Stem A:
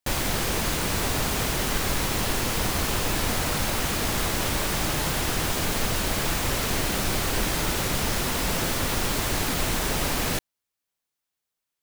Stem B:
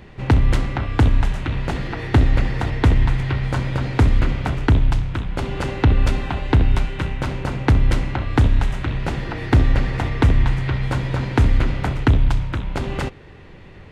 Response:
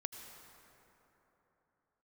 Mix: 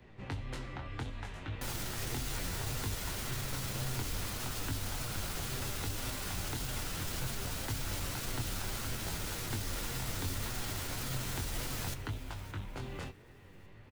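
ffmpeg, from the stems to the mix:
-filter_complex "[0:a]equalizer=f=1.4k:w=7.6:g=5.5,alimiter=limit=-22dB:level=0:latency=1,adelay=1550,volume=-2dB,asplit=2[a][b];[b]volume=-17dB[c];[1:a]acrossover=split=290|3000[d][e][f];[d]acompressor=threshold=-24dB:ratio=6[g];[g][e][f]amix=inputs=3:normalize=0,flanger=delay=19:depth=5:speed=0.65,volume=-6.5dB[h];[c]aecho=0:1:574|1148|1722|2296|2870|3444:1|0.4|0.16|0.064|0.0256|0.0102[i];[a][h][i]amix=inputs=3:normalize=0,acrossover=split=160|3000[j][k][l];[k]acompressor=threshold=-38dB:ratio=6[m];[j][m][l]amix=inputs=3:normalize=0,flanger=delay=7.9:depth=3.2:regen=51:speed=1.8:shape=sinusoidal"

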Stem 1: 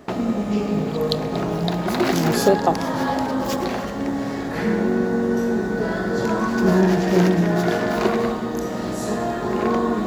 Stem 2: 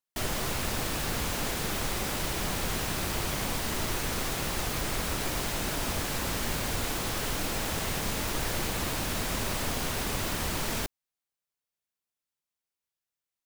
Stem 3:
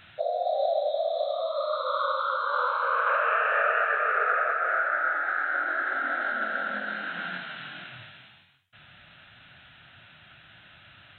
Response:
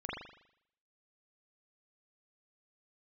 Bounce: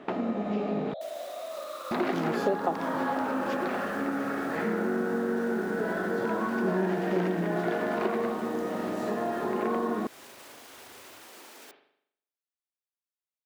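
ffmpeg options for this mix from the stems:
-filter_complex "[0:a]acrossover=split=180 3200:gain=0.112 1 0.126[a][b][c];[a][b][c]amix=inputs=3:normalize=0,volume=-1dB,asplit=3[d][e][f];[d]atrim=end=0.94,asetpts=PTS-STARTPTS,afade=t=out:st=0.936:d=0.004:c=hsin[g];[e]atrim=start=0.94:end=1.91,asetpts=PTS-STARTPTS,volume=0[h];[f]atrim=start=1.91,asetpts=PTS-STARTPTS,afade=t=in:d=0.004:c=hsin[i];[g][h][i]concat=n=3:v=0:a=1[j];[1:a]highpass=f=290:w=0.5412,highpass=f=290:w=1.3066,alimiter=level_in=4.5dB:limit=-24dB:level=0:latency=1,volume=-4.5dB,adelay=850,volume=-13.5dB,asplit=2[k][l];[l]volume=-6dB[m];[2:a]volume=-13.5dB,asplit=2[n][o];[o]volume=-4.5dB[p];[3:a]atrim=start_sample=2205[q];[m][p]amix=inputs=2:normalize=0[r];[r][q]afir=irnorm=-1:irlink=0[s];[j][k][n][s]amix=inputs=4:normalize=0,acompressor=threshold=-30dB:ratio=2"

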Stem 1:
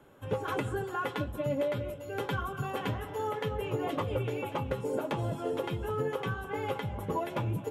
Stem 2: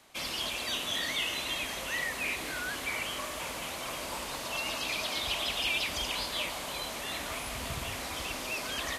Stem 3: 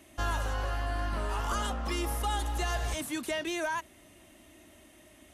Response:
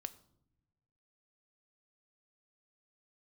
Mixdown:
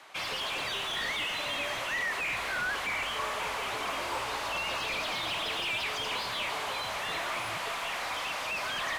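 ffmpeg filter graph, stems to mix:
-filter_complex "[0:a]volume=-17dB[a];[1:a]highpass=760,volume=0dB[b];[2:a]adelay=2100,volume=-19.5dB[c];[a][b][c]amix=inputs=3:normalize=0,asplit=2[d][e];[e]highpass=f=720:p=1,volume=21dB,asoftclip=type=tanh:threshold=-19dB[f];[d][f]amix=inputs=2:normalize=0,lowpass=f=1.2k:p=1,volume=-6dB"

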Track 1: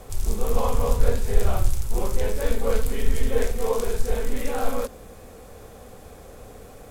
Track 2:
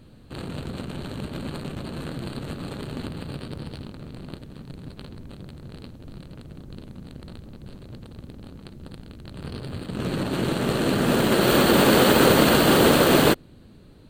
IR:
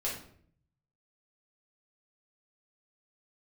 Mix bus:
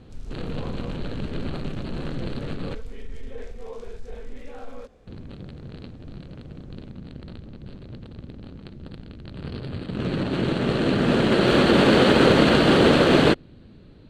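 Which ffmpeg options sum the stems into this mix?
-filter_complex "[0:a]alimiter=limit=-14dB:level=0:latency=1:release=11,volume=-11.5dB[a];[1:a]volume=1.5dB,asplit=3[b][c][d];[b]atrim=end=2.75,asetpts=PTS-STARTPTS,afade=t=out:st=2.746:d=0.004:c=hsin[e];[c]atrim=start=2.75:end=5.07,asetpts=PTS-STARTPTS,volume=0[f];[d]atrim=start=5.07,asetpts=PTS-STARTPTS,afade=t=in:d=0.004:c=hsin[g];[e][f][g]concat=n=3:v=0:a=1[h];[a][h]amix=inputs=2:normalize=0,lowpass=4.1k,equalizer=f=980:w=1.2:g=-3.5"

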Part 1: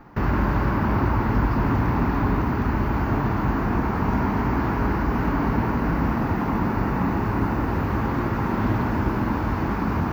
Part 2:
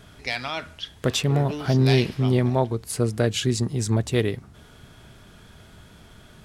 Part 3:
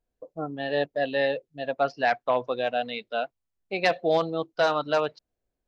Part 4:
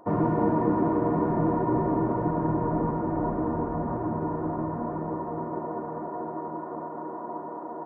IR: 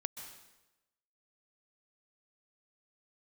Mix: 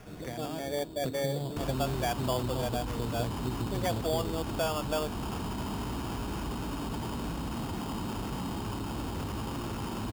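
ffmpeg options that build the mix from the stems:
-filter_complex "[0:a]lowpass=1.8k,alimiter=limit=-19.5dB:level=0:latency=1:release=18,adelay=1400,volume=-8dB[a];[1:a]acrossover=split=260|770[b][c][d];[b]acompressor=threshold=-34dB:ratio=4[e];[c]acompressor=threshold=-37dB:ratio=4[f];[d]acompressor=threshold=-50dB:ratio=4[g];[e][f][g]amix=inputs=3:normalize=0,volume=-1.5dB[h];[2:a]lowpass=f=1.6k:w=0.5412,lowpass=f=1.6k:w=1.3066,volume=-5dB[i];[3:a]equalizer=f=970:t=o:w=0.88:g=-12,volume=-19dB[j];[a][h][i][j]amix=inputs=4:normalize=0,acrusher=samples=11:mix=1:aa=0.000001,acompressor=threshold=-31dB:ratio=1.5"

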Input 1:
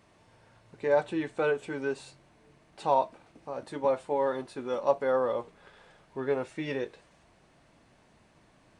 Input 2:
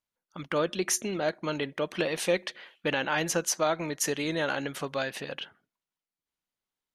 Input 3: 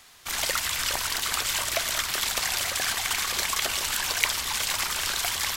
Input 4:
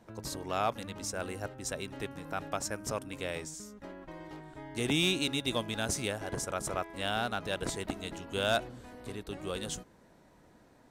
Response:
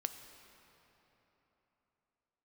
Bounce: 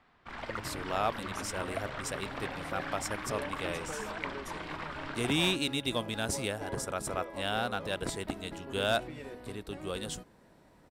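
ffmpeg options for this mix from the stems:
-filter_complex "[0:a]acompressor=threshold=-28dB:ratio=6,adelay=2500,volume=-11.5dB[a];[1:a]adelay=450,volume=-19.5dB[b];[2:a]lowpass=1.5k,equalizer=f=220:w=1.5:g=6.5,volume=-6dB[c];[3:a]adelay=400,volume=0dB[d];[a][b][c][d]amix=inputs=4:normalize=0,equalizer=f=6.4k:w=6.1:g=-6"

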